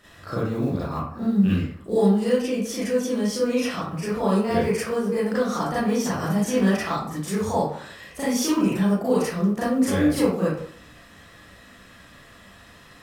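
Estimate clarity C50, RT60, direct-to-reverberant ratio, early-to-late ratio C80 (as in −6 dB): −1.0 dB, 0.55 s, −10.0 dB, 5.0 dB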